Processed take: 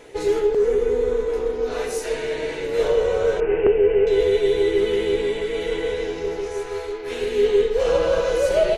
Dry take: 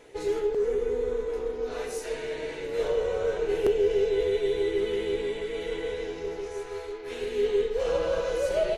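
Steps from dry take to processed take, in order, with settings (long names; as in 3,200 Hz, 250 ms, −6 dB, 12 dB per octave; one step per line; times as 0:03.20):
0:03.40–0:04.07: elliptic low-pass filter 2,700 Hz, stop band 40 dB
level +7.5 dB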